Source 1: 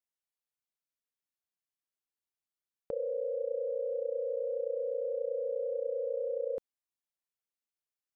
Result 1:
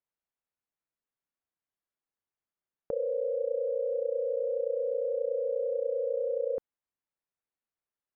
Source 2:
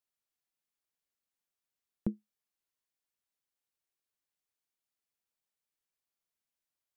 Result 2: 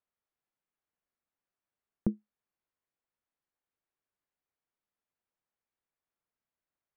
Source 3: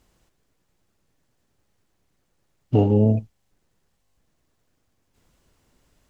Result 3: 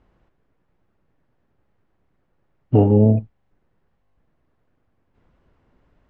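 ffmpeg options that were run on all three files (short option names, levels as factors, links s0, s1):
-af "lowpass=1800,volume=1.5"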